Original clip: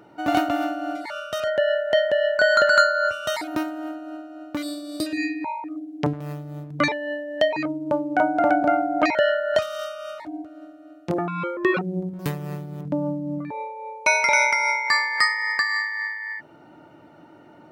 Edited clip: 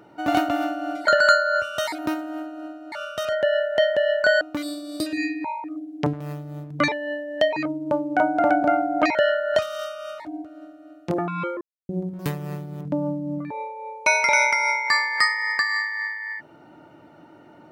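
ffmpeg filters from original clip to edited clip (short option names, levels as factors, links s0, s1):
-filter_complex "[0:a]asplit=6[s0][s1][s2][s3][s4][s5];[s0]atrim=end=1.072[s6];[s1]atrim=start=2.558:end=4.412[s7];[s2]atrim=start=1.068:end=2.562[s8];[s3]atrim=start=4.408:end=11.61,asetpts=PTS-STARTPTS,afade=t=out:st=7.198:d=0.004:c=hsin[s9];[s4]atrim=start=11.61:end=11.89,asetpts=PTS-STARTPTS,volume=0[s10];[s5]atrim=start=11.89,asetpts=PTS-STARTPTS,afade=t=in:d=0.004:c=hsin[s11];[s6][s7]acrossfade=d=0.004:c1=hsin:c2=hsin[s12];[s12][s8]acrossfade=d=0.004:c1=hsin:c2=hsin[s13];[s9][s10][s11]concat=n=3:v=0:a=1[s14];[s13][s14]acrossfade=d=0.004:c1=hsin:c2=hsin"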